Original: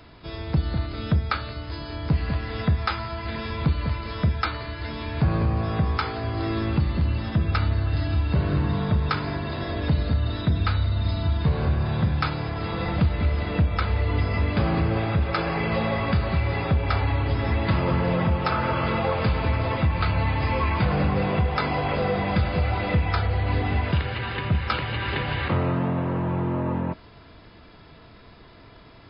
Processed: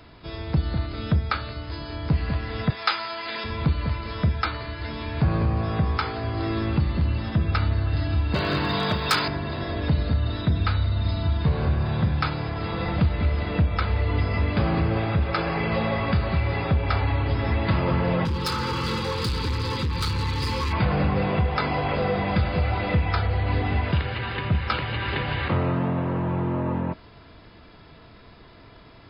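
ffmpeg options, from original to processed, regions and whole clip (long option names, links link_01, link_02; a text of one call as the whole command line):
ffmpeg -i in.wav -filter_complex "[0:a]asettb=1/sr,asplit=3[link_01][link_02][link_03];[link_01]atrim=end=2.704[link_04];[link_02]atrim=start=2.7:end=3.44,asetpts=PTS-STARTPTS,afade=type=in:duration=0.004:curve=qsin,afade=type=out:start_time=0.736:duration=0.004:curve=qsin,highpass=380,highshelf=frequency=2100:gain=9[link_05];[link_03]atrim=start=3.436[link_06];[link_04][link_05]acrossfade=duration=0.004:curve1=hsin:curve2=qsin[link_07];[link_07][link_06]acrossfade=duration=0.004:curve1=qsin:curve2=hsin,asettb=1/sr,asplit=3[link_08][link_09][link_10];[link_08]atrim=end=8.344[link_11];[link_09]atrim=start=8.34:end=9.28,asetpts=PTS-STARTPTS,afade=type=in:duration=0.004:curve=qsin,afade=type=out:start_time=0.936:duration=0.004:curve=qsin,aemphasis=mode=production:type=riaa,acontrast=70,asoftclip=type=hard:threshold=-15.5dB[link_12];[link_10]atrim=start=9.276[link_13];[link_11][link_12]acrossfade=duration=0.004:curve1=hsin:curve2=qsin[link_14];[link_14][link_13]acrossfade=duration=0.004:curve1=qsin:curve2=hsin,asettb=1/sr,asplit=3[link_15][link_16][link_17];[link_15]atrim=end=18.254[link_18];[link_16]atrim=start=18.25:end=20.73,asetpts=PTS-STARTPTS,afade=type=in:duration=0.004:curve=qsin,afade=type=out:start_time=2.476:duration=0.004:curve=qsin,highshelf=frequency=3300:width_type=q:width=1.5:gain=11.5,asoftclip=type=hard:threshold=-22dB,asuperstop=centerf=670:order=8:qfactor=2.2[link_19];[link_17]atrim=start=20.726[link_20];[link_18][link_19]acrossfade=duration=0.004:curve1=hsin:curve2=qsin[link_21];[link_21][link_20]acrossfade=duration=0.004:curve1=qsin:curve2=hsin" out.wav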